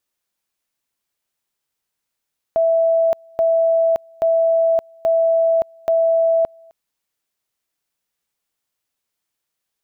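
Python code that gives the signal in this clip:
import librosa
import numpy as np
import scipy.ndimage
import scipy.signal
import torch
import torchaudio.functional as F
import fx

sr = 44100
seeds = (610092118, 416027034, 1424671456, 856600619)

y = fx.two_level_tone(sr, hz=659.0, level_db=-12.5, drop_db=30.0, high_s=0.57, low_s=0.26, rounds=5)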